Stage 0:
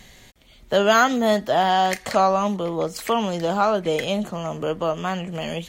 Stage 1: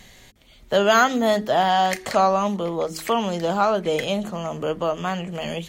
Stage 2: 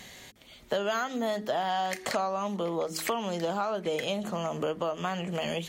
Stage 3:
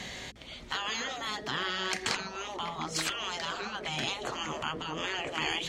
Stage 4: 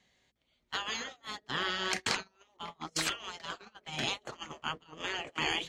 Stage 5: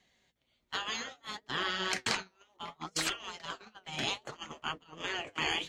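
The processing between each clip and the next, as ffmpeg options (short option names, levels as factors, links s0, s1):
-af "bandreject=f=53.35:t=h:w=4,bandreject=f=106.7:t=h:w=4,bandreject=f=160.05:t=h:w=4,bandreject=f=213.4:t=h:w=4,bandreject=f=266.75:t=h:w=4,bandreject=f=320.1:t=h:w=4,bandreject=f=373.45:t=h:w=4,bandreject=f=426.8:t=h:w=4"
-af "highpass=f=160:p=1,acompressor=threshold=0.0355:ratio=6,volume=1.19"
-af "lowpass=6200,afftfilt=real='re*lt(hypot(re,im),0.0562)':imag='im*lt(hypot(re,im),0.0562)':win_size=1024:overlap=0.75,aeval=exprs='val(0)+0.000447*(sin(2*PI*60*n/s)+sin(2*PI*2*60*n/s)/2+sin(2*PI*3*60*n/s)/3+sin(2*PI*4*60*n/s)/4+sin(2*PI*5*60*n/s)/5)':c=same,volume=2.37"
-af "agate=range=0.0316:threshold=0.0224:ratio=16:detection=peak"
-af "flanger=delay=2.4:depth=9.3:regen=66:speed=0.64:shape=triangular,volume=1.58"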